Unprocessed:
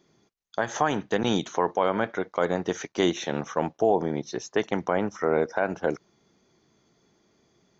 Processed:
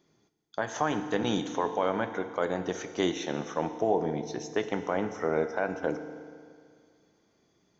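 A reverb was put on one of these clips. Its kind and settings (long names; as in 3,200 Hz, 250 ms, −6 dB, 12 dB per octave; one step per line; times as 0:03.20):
feedback delay network reverb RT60 2.1 s, low-frequency decay 1×, high-frequency decay 0.95×, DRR 8.5 dB
level −4.5 dB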